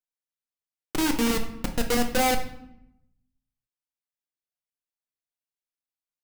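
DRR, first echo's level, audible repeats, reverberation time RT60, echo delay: 3.0 dB, no echo audible, no echo audible, 0.80 s, no echo audible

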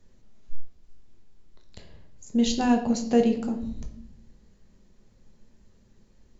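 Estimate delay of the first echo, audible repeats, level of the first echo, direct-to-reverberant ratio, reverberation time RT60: no echo audible, no echo audible, no echo audible, 3.5 dB, 0.70 s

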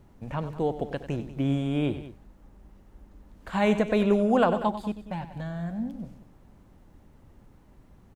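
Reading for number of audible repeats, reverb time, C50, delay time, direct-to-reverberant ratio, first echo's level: 2, no reverb audible, no reverb audible, 95 ms, no reverb audible, −12.5 dB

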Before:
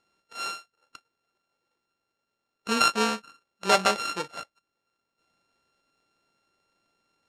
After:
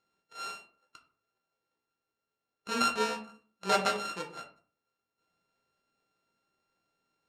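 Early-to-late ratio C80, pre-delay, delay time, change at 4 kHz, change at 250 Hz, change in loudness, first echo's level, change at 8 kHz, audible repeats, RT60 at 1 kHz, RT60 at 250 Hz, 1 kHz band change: 15.5 dB, 3 ms, no echo audible, −7.5 dB, −6.0 dB, −6.0 dB, no echo audible, −7.5 dB, no echo audible, 0.45 s, 0.55 s, −5.5 dB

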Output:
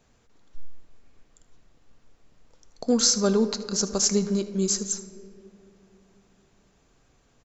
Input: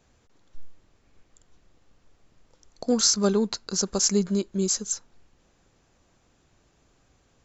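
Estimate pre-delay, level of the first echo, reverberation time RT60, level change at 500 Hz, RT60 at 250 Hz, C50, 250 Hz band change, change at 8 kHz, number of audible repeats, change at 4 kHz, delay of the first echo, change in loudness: 4 ms, −16.5 dB, 2.8 s, +1.0 dB, 3.2 s, 11.5 dB, +0.5 dB, can't be measured, 1, 0.0 dB, 77 ms, +0.5 dB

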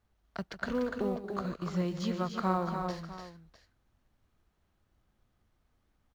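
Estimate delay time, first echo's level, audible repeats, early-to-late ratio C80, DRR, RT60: 149 ms, −13.5 dB, 5, no reverb audible, no reverb audible, no reverb audible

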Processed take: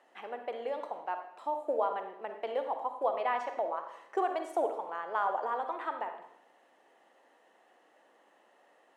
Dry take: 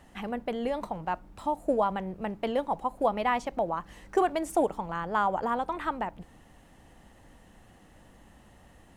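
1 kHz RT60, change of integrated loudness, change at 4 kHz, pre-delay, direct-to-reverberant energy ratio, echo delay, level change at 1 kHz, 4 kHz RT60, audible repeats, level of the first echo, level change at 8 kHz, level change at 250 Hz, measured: 0.75 s, −4.5 dB, −8.0 dB, 36 ms, 6.0 dB, no echo audible, −3.5 dB, 0.70 s, no echo audible, no echo audible, below −10 dB, −13.5 dB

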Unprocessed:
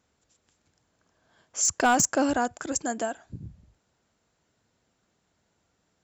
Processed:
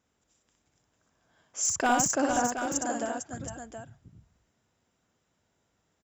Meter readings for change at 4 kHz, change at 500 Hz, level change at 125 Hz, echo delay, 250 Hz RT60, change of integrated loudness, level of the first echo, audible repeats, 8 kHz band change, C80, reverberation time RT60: −2.5 dB, −2.0 dB, −1.5 dB, 62 ms, no reverb audible, −2.5 dB, −3.5 dB, 3, −2.0 dB, no reverb audible, no reverb audible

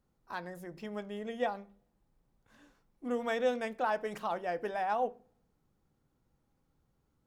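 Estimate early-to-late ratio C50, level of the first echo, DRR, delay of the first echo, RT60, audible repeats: 22.5 dB, no echo audible, 11.0 dB, no echo audible, 0.45 s, no echo audible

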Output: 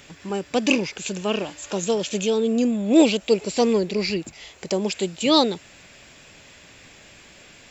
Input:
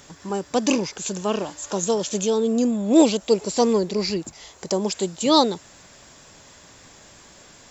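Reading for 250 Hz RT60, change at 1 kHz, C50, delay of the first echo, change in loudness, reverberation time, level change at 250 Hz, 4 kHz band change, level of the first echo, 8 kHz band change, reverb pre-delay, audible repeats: no reverb audible, −3.0 dB, no reverb audible, no echo audible, 0.0 dB, no reverb audible, 0.0 dB, +1.5 dB, no echo audible, can't be measured, no reverb audible, no echo audible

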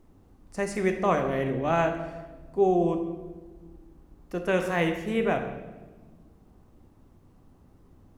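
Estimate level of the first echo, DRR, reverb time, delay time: no echo audible, 4.5 dB, 1.3 s, no echo audible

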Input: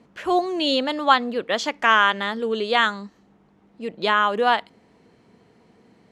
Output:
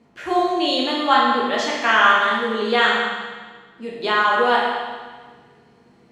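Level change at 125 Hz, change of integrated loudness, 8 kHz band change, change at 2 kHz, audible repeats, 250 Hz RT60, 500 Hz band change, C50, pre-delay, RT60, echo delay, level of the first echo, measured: can't be measured, +2.5 dB, +2.5 dB, +3.5 dB, no echo audible, 1.5 s, +2.5 dB, −0.5 dB, 8 ms, 1.5 s, no echo audible, no echo audible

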